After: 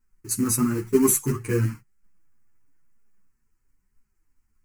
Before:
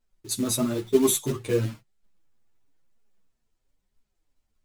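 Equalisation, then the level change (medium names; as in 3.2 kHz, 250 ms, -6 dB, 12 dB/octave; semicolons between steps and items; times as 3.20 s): static phaser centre 1.5 kHz, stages 4; +5.5 dB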